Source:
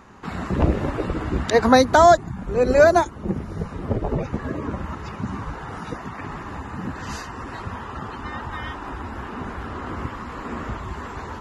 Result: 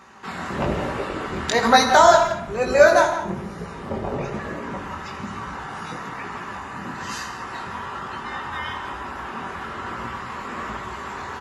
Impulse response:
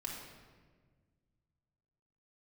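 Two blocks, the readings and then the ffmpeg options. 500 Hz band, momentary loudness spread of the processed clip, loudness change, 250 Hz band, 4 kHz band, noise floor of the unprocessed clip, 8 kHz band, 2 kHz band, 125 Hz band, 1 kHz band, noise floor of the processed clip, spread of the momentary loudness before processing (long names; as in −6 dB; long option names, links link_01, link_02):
−0.5 dB, 18 LU, 0.0 dB, −4.5 dB, +5.5 dB, −36 dBFS, +4.5 dB, +3.5 dB, −6.5 dB, +1.5 dB, −35 dBFS, 18 LU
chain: -filter_complex "[0:a]highpass=frequency=100:poles=1,tiltshelf=frequency=680:gain=-5,flanger=delay=16.5:depth=7.8:speed=1.1,asplit=2[link_01][link_02];[link_02]adelay=170,highpass=300,lowpass=3400,asoftclip=type=hard:threshold=-12dB,volume=-11dB[link_03];[link_01][link_03]amix=inputs=2:normalize=0,asplit=2[link_04][link_05];[1:a]atrim=start_sample=2205,atrim=end_sample=6615,asetrate=27342,aresample=44100[link_06];[link_05][link_06]afir=irnorm=-1:irlink=0,volume=-1dB[link_07];[link_04][link_07]amix=inputs=2:normalize=0,volume=-2.5dB"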